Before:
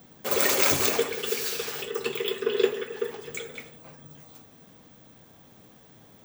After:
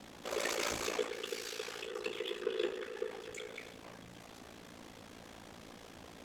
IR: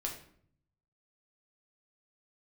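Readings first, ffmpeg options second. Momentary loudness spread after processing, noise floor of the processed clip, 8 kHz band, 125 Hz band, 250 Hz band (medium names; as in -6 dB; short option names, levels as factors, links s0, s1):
17 LU, -54 dBFS, -14.0 dB, -12.0 dB, -9.0 dB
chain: -af "aeval=exprs='val(0)+0.5*0.0237*sgn(val(0))':c=same,aeval=exprs='val(0)*sin(2*PI*28*n/s)':c=same,adynamicsmooth=sensitivity=1.5:basefreq=7800,equalizer=f=140:t=o:w=0.78:g=-9,volume=0.376"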